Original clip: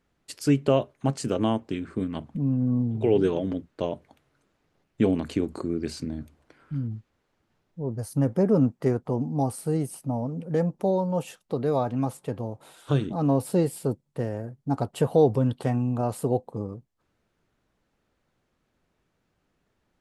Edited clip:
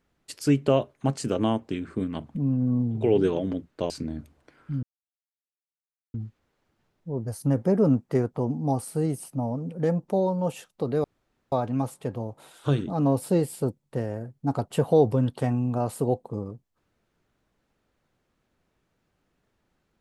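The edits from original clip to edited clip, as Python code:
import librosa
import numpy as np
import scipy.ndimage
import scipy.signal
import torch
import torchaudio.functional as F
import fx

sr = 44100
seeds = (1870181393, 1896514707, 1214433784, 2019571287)

y = fx.edit(x, sr, fx.cut(start_s=3.9, length_s=2.02),
    fx.insert_silence(at_s=6.85, length_s=1.31),
    fx.insert_room_tone(at_s=11.75, length_s=0.48), tone=tone)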